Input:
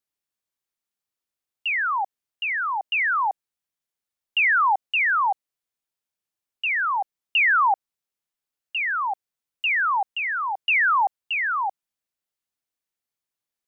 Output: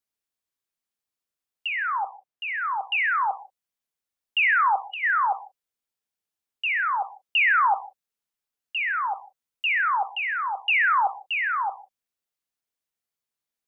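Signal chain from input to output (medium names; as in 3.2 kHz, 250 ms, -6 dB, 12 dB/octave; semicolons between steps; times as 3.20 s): 1.67–2.63 s: treble shelf 2.8 kHz -8 dB; 4.76–5.03 s: time-frequency box 1.4–2.9 kHz -11 dB; gated-style reverb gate 200 ms falling, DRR 10 dB; trim -1.5 dB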